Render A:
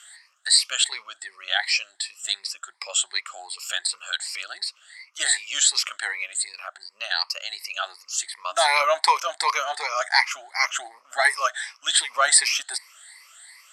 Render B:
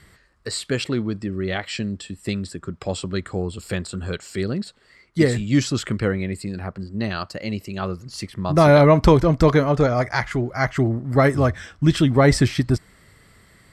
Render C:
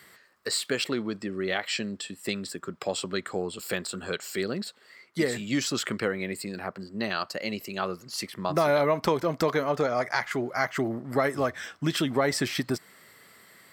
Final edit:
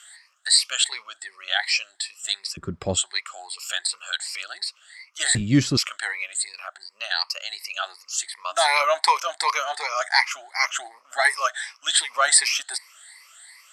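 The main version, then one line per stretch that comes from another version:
A
2.57–2.97 s: from B
5.35–5.77 s: from B
not used: C

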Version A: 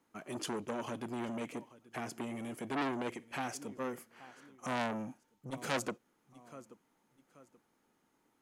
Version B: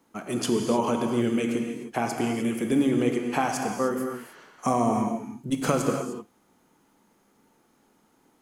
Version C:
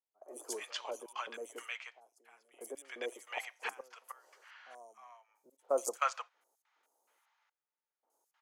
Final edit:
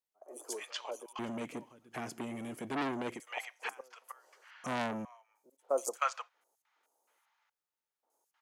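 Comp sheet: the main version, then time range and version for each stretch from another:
C
1.19–3.20 s: from A
4.64–5.05 s: from A
not used: B

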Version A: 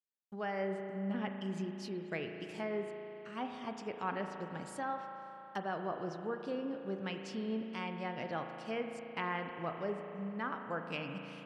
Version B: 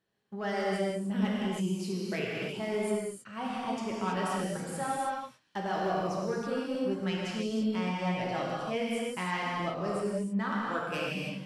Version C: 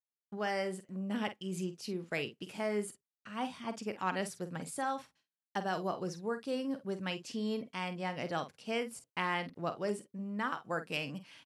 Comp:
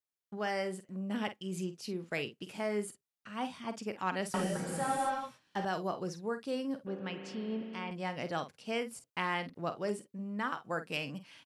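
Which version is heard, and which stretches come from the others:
C
4.34–5.65 s: from B
6.87–7.91 s: from A

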